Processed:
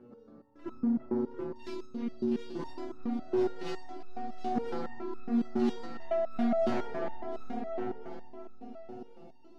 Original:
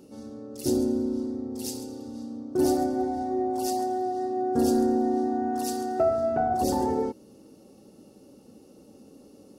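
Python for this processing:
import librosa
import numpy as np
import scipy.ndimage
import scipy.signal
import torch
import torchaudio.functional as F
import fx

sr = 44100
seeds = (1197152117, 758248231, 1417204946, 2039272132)

p1 = fx.tracing_dist(x, sr, depth_ms=0.29)
p2 = fx.dynamic_eq(p1, sr, hz=220.0, q=4.7, threshold_db=-44.0, ratio=4.0, max_db=6)
p3 = fx.rider(p2, sr, range_db=3, speed_s=0.5)
p4 = p2 + (p3 * 10.0 ** (-1.5 / 20.0))
p5 = fx.filter_sweep_lowpass(p4, sr, from_hz=1500.0, to_hz=3300.0, start_s=0.81, end_s=1.56, q=1.5)
p6 = fx.echo_wet_lowpass(p5, sr, ms=338, feedback_pct=62, hz=1900.0, wet_db=-4.0)
p7 = 10.0 ** (-16.0 / 20.0) * np.tanh(p6 / 10.0 ** (-16.0 / 20.0))
p8 = fx.ellip_bandstop(p7, sr, low_hz=390.0, high_hz=1000.0, order=3, stop_db=40, at=(5.04, 5.69))
p9 = fx.echo_feedback(p8, sr, ms=722, feedback_pct=22, wet_db=-5.5)
p10 = fx.resonator_held(p9, sr, hz=7.2, low_hz=120.0, high_hz=1300.0)
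y = p10 * 10.0 ** (1.5 / 20.0)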